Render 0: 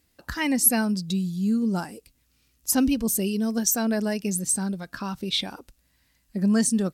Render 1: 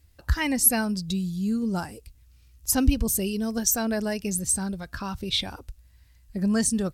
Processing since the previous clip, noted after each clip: resonant low shelf 130 Hz +13.5 dB, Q 1.5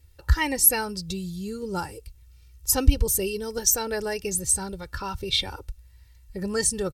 comb 2.2 ms, depth 73%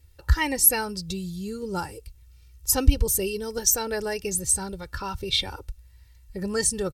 nothing audible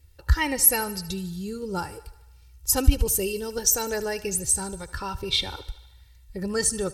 thinning echo 75 ms, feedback 65%, high-pass 290 Hz, level -17 dB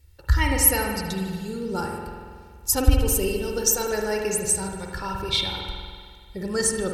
spring tank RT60 1.9 s, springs 47 ms, chirp 40 ms, DRR 1 dB

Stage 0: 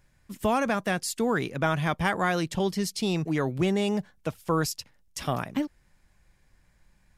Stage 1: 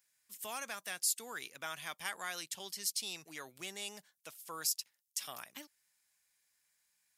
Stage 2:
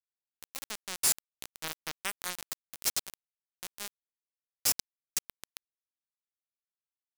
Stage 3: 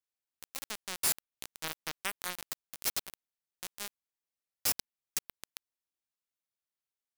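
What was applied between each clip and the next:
differentiator
diffused feedback echo 0.452 s, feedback 59%, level -9.5 dB; bit-crush 5-bit; gain +5 dB
dynamic EQ 7000 Hz, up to -6 dB, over -44 dBFS, Q 1

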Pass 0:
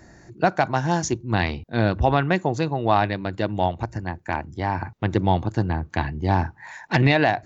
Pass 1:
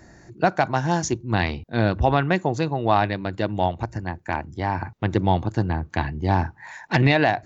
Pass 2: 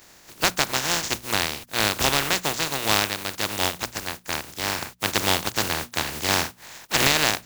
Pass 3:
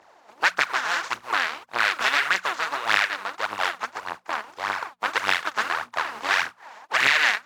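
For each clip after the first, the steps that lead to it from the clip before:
nothing audible
spectral contrast lowered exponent 0.2; notches 60/120/180/240 Hz; gain -2 dB
phaser 1.7 Hz, delay 4.9 ms, feedback 58%; auto-wah 790–1800 Hz, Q 2, up, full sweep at -15.5 dBFS; gain +5.5 dB

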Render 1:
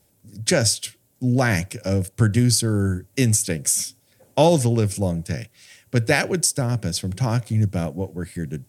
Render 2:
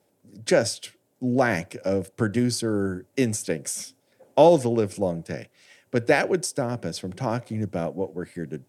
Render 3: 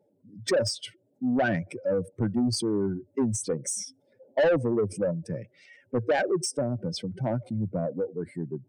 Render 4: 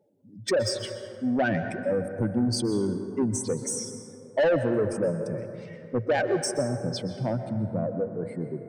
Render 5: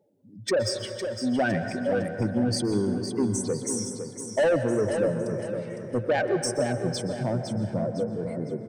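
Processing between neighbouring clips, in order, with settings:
HPF 410 Hz 12 dB/oct; tilt -3.5 dB/oct
spectral contrast raised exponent 2.1; soft clip -18.5 dBFS, distortion -10 dB
plate-style reverb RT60 2.8 s, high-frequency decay 0.35×, pre-delay 0.11 s, DRR 7.5 dB
feedback echo 0.508 s, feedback 38%, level -8 dB

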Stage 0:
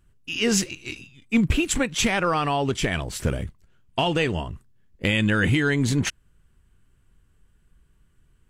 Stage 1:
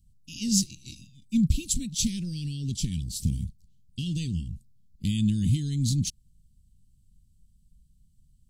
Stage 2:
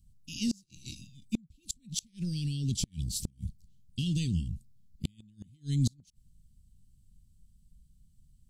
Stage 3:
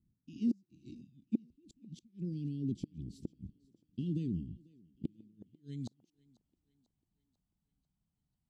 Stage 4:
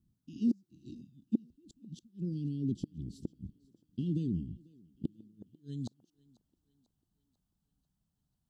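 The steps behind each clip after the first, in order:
elliptic band-stop 210–4200 Hz, stop band 80 dB
flipped gate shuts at -18 dBFS, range -35 dB
band-pass sweep 330 Hz -> 780 Hz, 5.25–5.86; thinning echo 0.494 s, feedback 53%, high-pass 240 Hz, level -23 dB; gain +5.5 dB
Butterworth band-stop 2200 Hz, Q 2.1; gain +2.5 dB

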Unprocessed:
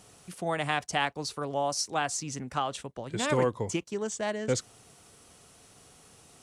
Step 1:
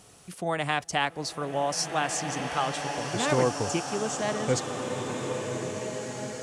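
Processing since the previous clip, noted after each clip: bloom reverb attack 1.98 s, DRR 3.5 dB; gain +1.5 dB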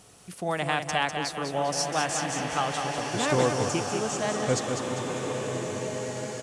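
feedback echo 0.199 s, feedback 45%, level -6.5 dB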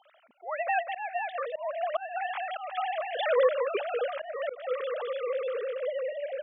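sine-wave speech; auto swell 0.258 s; HPF 230 Hz 12 dB/oct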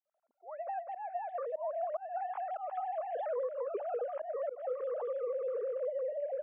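opening faded in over 1.46 s; compressor 10:1, threshold -32 dBFS, peak gain reduction 14 dB; Butterworth band-pass 500 Hz, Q 0.72

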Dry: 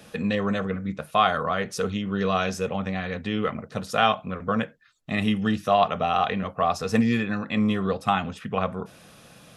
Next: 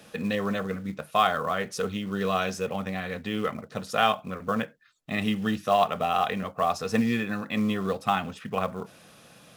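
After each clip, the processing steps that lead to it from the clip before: low shelf 96 Hz -8.5 dB; in parallel at -3 dB: short-mantissa float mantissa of 2-bit; on the sum: gain -6.5 dB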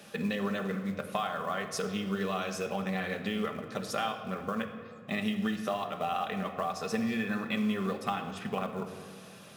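low shelf 120 Hz -8 dB; compressor, threshold -30 dBFS, peak gain reduction 13 dB; shoebox room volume 3900 m³, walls mixed, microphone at 1.2 m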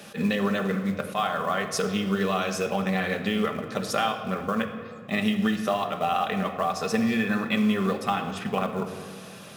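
attack slew limiter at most 310 dB/s; gain +7 dB

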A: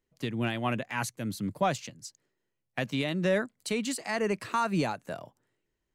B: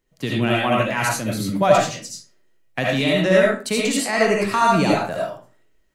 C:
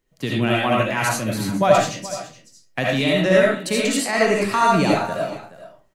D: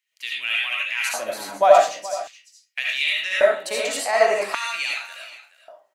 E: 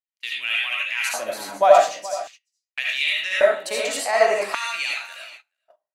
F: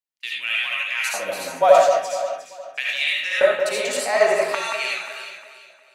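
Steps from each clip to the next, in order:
reverb RT60 0.40 s, pre-delay 35 ms, DRR -4 dB; gain +7 dB
echo 0.423 s -16 dB
LFO high-pass square 0.44 Hz 670–2400 Hz; gain -3 dB
gate -41 dBFS, range -25 dB
echo with dull and thin repeats by turns 0.178 s, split 2100 Hz, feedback 57%, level -6.5 dB; frequency shift -27 Hz

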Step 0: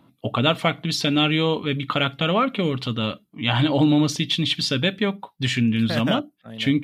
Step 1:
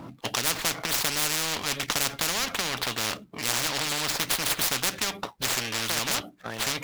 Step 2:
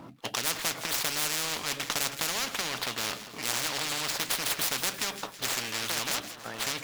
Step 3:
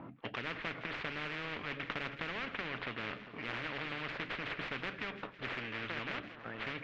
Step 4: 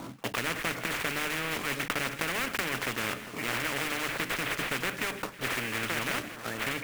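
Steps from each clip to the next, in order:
median filter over 15 samples; spectral compressor 10:1
low shelf 160 Hz -5.5 dB; on a send: split-band echo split 1500 Hz, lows 0.4 s, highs 0.162 s, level -12.5 dB; on the sum: gain -3.5 dB
LPF 2500 Hz 24 dB/oct; dynamic EQ 840 Hz, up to -8 dB, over -52 dBFS, Q 1.3; gain -2 dB
block floating point 3-bit; notches 50/100/150/200 Hz; gain +8 dB

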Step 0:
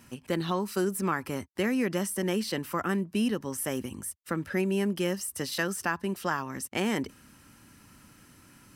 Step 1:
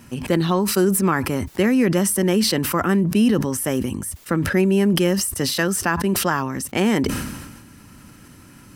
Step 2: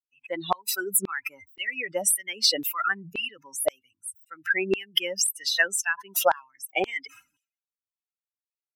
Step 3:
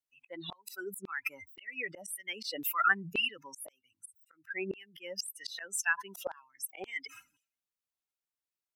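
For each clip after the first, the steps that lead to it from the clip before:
low shelf 500 Hz +5 dB; sustainer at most 42 dB/s; gain +6.5 dB
per-bin expansion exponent 3; LFO high-pass saw down 1.9 Hz 460–3800 Hz; gain +5 dB
auto swell 0.417 s

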